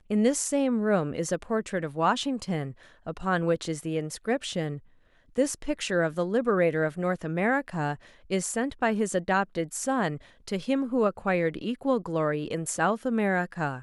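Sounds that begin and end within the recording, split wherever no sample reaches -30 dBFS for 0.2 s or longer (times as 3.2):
3.07–4.76
5.38–7.94
8.31–10.16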